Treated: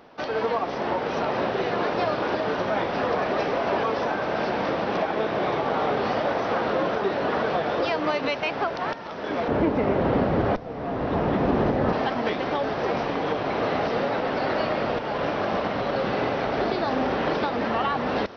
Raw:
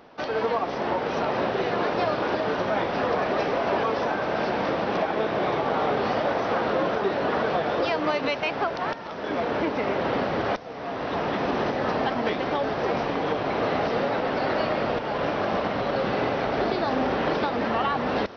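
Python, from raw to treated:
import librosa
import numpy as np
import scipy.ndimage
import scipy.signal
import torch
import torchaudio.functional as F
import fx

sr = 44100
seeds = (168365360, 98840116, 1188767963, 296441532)

y = fx.tilt_eq(x, sr, slope=-3.0, at=(9.48, 11.93))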